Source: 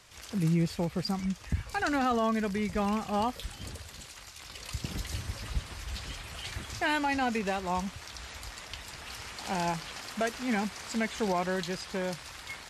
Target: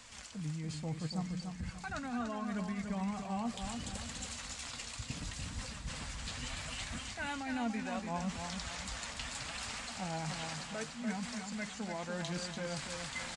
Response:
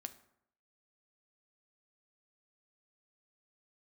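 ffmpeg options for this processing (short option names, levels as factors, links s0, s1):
-filter_complex "[0:a]equalizer=f=250:t=o:w=0.33:g=8,equalizer=f=400:t=o:w=0.33:g=-11,equalizer=f=8000:t=o:w=0.33:g=6,areverse,acompressor=threshold=0.01:ratio=6,areverse,flanger=delay=3.5:depth=5.1:regen=49:speed=0.75:shape=triangular,asetrate=41895,aresample=44100,asplit=2[s0][s1];[s1]aecho=0:1:291|582|873|1164|1455:0.501|0.2|0.0802|0.0321|0.0128[s2];[s0][s2]amix=inputs=2:normalize=0,aresample=22050,aresample=44100,volume=2"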